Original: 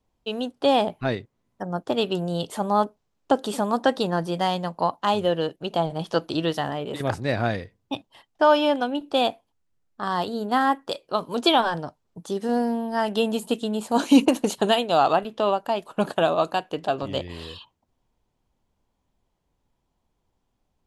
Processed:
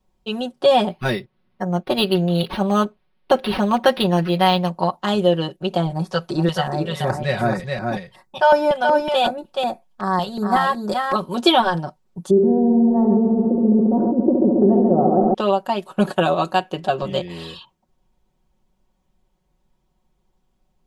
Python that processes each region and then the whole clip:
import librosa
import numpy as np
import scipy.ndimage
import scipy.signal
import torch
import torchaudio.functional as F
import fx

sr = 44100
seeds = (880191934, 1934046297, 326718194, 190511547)

y = fx.chain(x, sr, fx.peak_eq(hz=4600.0, db=9.5, octaves=2.4),
    fx.resample_linear(factor=6), at=(0.9, 4.7))
y = fx.chain(y, sr, fx.echo_single(ms=427, db=-4.0),
    fx.filter_lfo_notch(shape='square', hz=2.7, low_hz=310.0, high_hz=3100.0, q=1.0), at=(5.93, 11.16))
y = fx.chain(y, sr, fx.ladder_lowpass(hz=560.0, resonance_pct=30),
    fx.echo_heads(ms=69, heads='first and second', feedback_pct=73, wet_db=-8.5),
    fx.env_flatten(amount_pct=70), at=(12.3, 15.34))
y = fx.low_shelf(y, sr, hz=250.0, db=4.0)
y = y + 0.86 * np.pad(y, (int(5.4 * sr / 1000.0), 0))[:len(y)]
y = y * 10.0 ** (1.0 / 20.0)